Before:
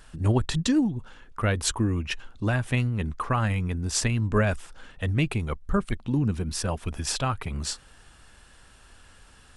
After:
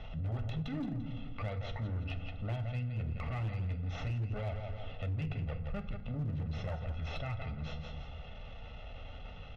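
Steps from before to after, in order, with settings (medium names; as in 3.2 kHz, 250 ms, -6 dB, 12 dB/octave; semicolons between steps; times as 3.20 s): comb filter that takes the minimum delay 0.32 ms; feedback delay 170 ms, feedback 25%, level -12 dB; transient shaper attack -10 dB, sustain +2 dB; Bessel low-pass 2.5 kHz, order 8; comb 1.5 ms, depth 96%; compression 4:1, threshold -38 dBFS, peak gain reduction 17.5 dB; FDN reverb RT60 0.59 s, low-frequency decay 1.5×, high-frequency decay 0.65×, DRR 6.5 dB; hard clipper -31 dBFS, distortion -19 dB; three bands compressed up and down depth 40%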